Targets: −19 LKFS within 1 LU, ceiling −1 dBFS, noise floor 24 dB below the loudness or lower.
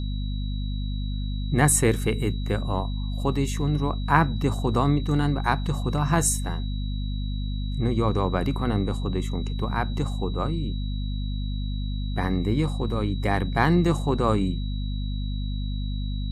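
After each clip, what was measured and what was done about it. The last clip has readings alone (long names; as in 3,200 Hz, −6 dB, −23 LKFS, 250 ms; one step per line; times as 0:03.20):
mains hum 50 Hz; hum harmonics up to 250 Hz; level of the hum −25 dBFS; interfering tone 3,900 Hz; level of the tone −43 dBFS; integrated loudness −26.0 LKFS; sample peak −3.0 dBFS; target loudness −19.0 LKFS
→ mains-hum notches 50/100/150/200/250 Hz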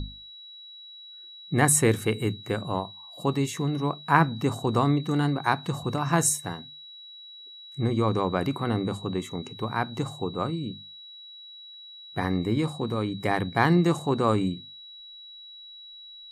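mains hum none found; interfering tone 3,900 Hz; level of the tone −43 dBFS
→ notch filter 3,900 Hz, Q 30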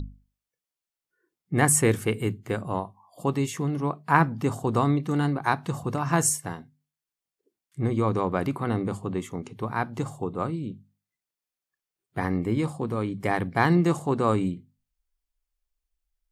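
interfering tone none found; integrated loudness −26.0 LKFS; sample peak −3.0 dBFS; target loudness −19.0 LKFS
→ level +7 dB
brickwall limiter −1 dBFS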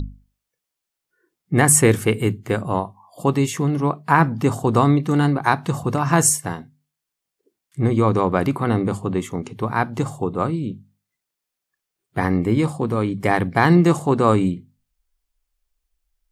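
integrated loudness −19.5 LKFS; sample peak −1.0 dBFS; background noise floor −83 dBFS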